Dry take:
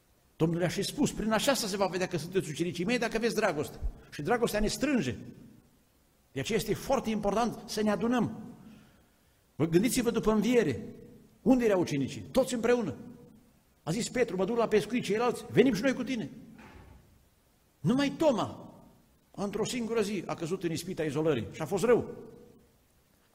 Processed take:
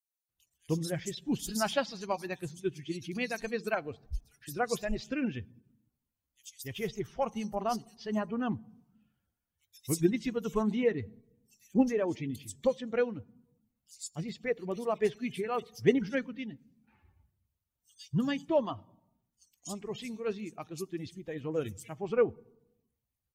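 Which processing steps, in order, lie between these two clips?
per-bin expansion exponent 1.5; bands offset in time highs, lows 0.29 s, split 4400 Hz

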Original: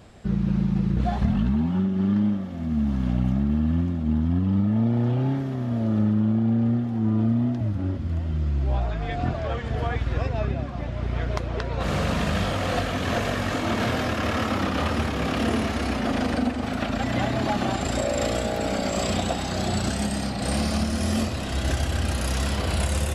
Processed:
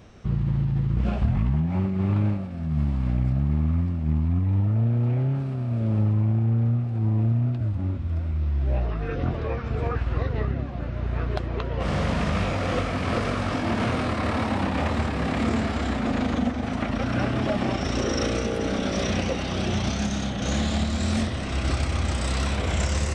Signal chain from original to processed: formant shift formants -5 st; Doppler distortion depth 0.25 ms

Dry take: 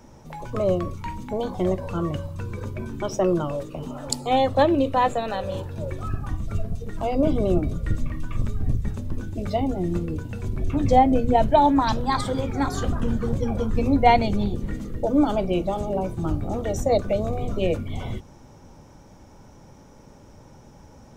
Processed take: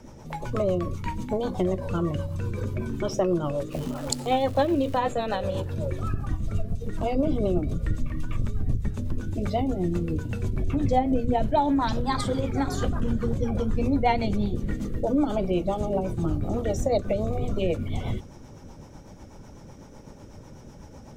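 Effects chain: rotary speaker horn 8 Hz; 3.71–4.96 crackle 440/s -37 dBFS; compressor 2:1, threshold -29 dBFS, peak gain reduction 9.5 dB; gain +4.5 dB

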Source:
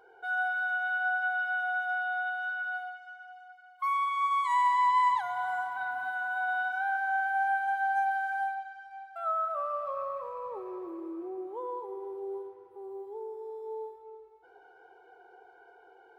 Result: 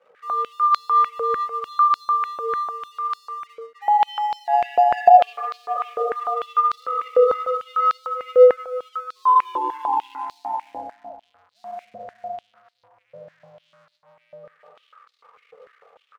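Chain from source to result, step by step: spectral contrast raised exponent 1.8; on a send: echo 0.569 s -7 dB; on the sum: reverb RT60 1.4 s, pre-delay 70 ms, DRR 2 dB; in parallel at -5.5 dB: soft clip -25.5 dBFS, distortion -12 dB; on the sum: frequency shift -280 Hz; crossover distortion -55 dBFS; stepped high-pass 6.7 Hz 520–4200 Hz; gain +1.5 dB

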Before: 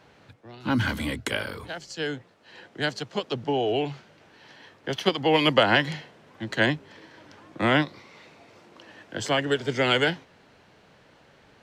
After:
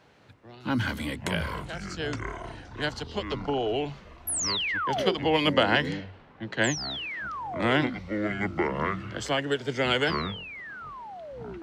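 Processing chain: 4.27–5.15 painted sound fall 340–12000 Hz -26 dBFS; 5.3–6.65 low-pass opened by the level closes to 2500 Hz, open at -17 dBFS; echoes that change speed 0.236 s, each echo -7 st, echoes 3, each echo -6 dB; gain -3 dB

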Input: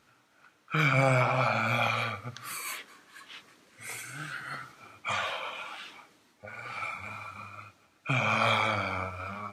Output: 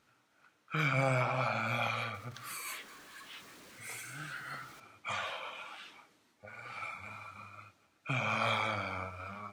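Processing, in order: 2.14–4.8 zero-crossing step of -45 dBFS; gain -6 dB

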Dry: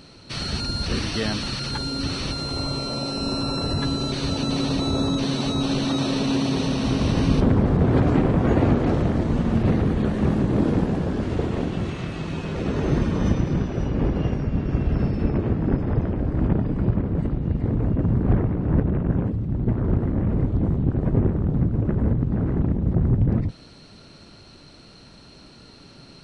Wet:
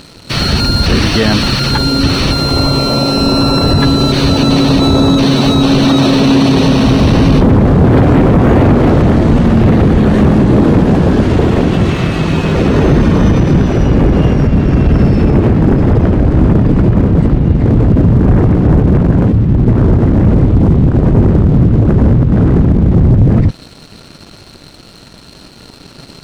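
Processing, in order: dynamic EQ 7700 Hz, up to -6 dB, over -48 dBFS, Q 0.82; sample leveller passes 2; maximiser +10 dB; gain -1 dB

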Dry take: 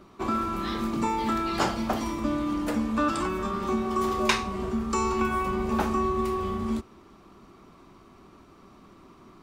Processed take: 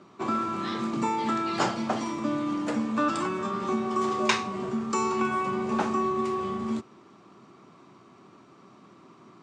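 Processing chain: elliptic band-pass 120–7800 Hz, stop band 40 dB

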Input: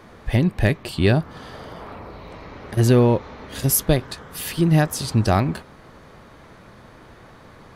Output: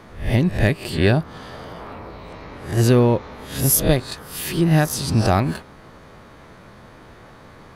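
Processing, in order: spectral swells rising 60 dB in 0.40 s

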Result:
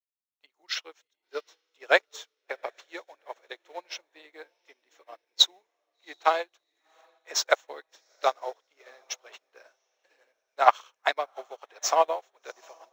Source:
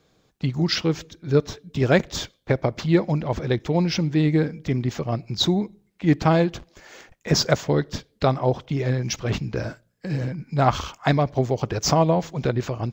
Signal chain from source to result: Bessel high-pass 790 Hz, order 6; notch 4800 Hz, Q 5.3; requantised 10-bit, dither none; on a send: diffused feedback echo 0.735 s, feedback 44%, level -12.5 dB; on the sum: upward expander 2.5:1, over -44 dBFS; gain +7 dB

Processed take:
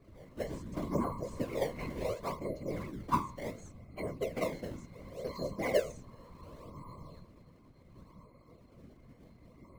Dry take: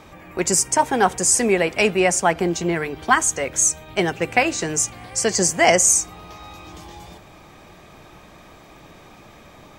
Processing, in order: octave resonator C, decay 0.37 s; in parallel at -5.5 dB: decimation with a swept rate 21×, swing 160% 0.69 Hz; 0.61–1.63 on the sum: flutter echo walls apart 8.7 m, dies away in 0.25 s; whisperiser; 2.61–3.03 sustainer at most 44 dB/s

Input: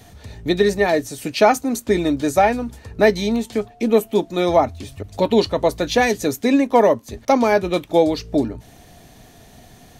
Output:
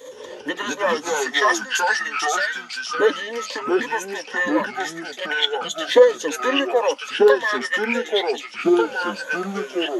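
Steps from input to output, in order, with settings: LFO high-pass saw up 0.34 Hz 550–4500 Hz; in parallel at +1 dB: compressor, threshold -32 dBFS, peak gain reduction 25 dB; on the sum: formant shift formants -5 st; ripple EQ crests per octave 1.1, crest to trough 17 dB; echoes that change speed 0.112 s, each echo -3 st, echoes 2; gain -4.5 dB

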